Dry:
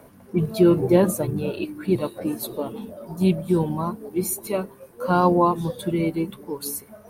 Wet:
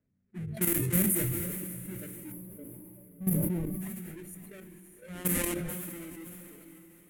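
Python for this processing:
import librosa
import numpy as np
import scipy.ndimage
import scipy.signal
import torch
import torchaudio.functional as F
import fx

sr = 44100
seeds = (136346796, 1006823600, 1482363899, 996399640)

p1 = fx.halfwave_hold(x, sr)
p2 = fx.noise_reduce_blind(p1, sr, reduce_db=16)
p3 = fx.hum_notches(p2, sr, base_hz=50, count=9)
p4 = fx.level_steps(p3, sr, step_db=13)
p5 = fx.env_lowpass(p4, sr, base_hz=1800.0, full_db=-14.0)
p6 = fx.curve_eq(p5, sr, hz=(180.0, 970.0, 2000.0, 3500.0, 5000.0, 11000.0), db=(0, -23, -6, -15, -18, 14))
p7 = p6 + fx.echo_diffused(p6, sr, ms=586, feedback_pct=41, wet_db=-10.0, dry=0)
p8 = fx.spec_box(p7, sr, start_s=2.32, length_s=1.49, low_hz=1200.0, high_hz=10000.0, gain_db=-12)
p9 = fx.sustainer(p8, sr, db_per_s=22.0)
y = F.gain(torch.from_numpy(p9), -9.0).numpy()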